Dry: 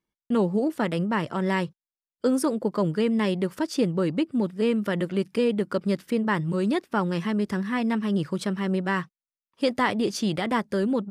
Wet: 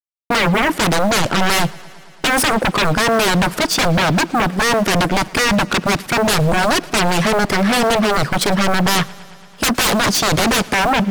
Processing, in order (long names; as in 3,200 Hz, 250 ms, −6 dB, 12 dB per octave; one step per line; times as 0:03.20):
mu-law and A-law mismatch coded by A
low-shelf EQ 68 Hz −11.5 dB
sine wavefolder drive 19 dB, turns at −12 dBFS
feedback echo with a swinging delay time 112 ms, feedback 75%, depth 52 cents, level −23 dB